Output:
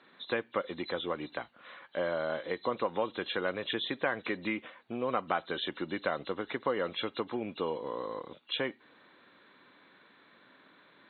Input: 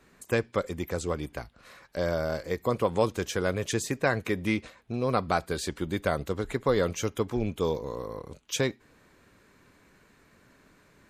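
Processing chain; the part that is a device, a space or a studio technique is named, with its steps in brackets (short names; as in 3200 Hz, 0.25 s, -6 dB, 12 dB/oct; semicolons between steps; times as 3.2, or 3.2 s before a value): hearing aid with frequency lowering (nonlinear frequency compression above 2700 Hz 4:1; compressor 3:1, threshold -28 dBFS, peak gain reduction 7.5 dB; speaker cabinet 320–6900 Hz, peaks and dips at 420 Hz -6 dB, 660 Hz -3 dB, 3000 Hz -10 dB); gain +3 dB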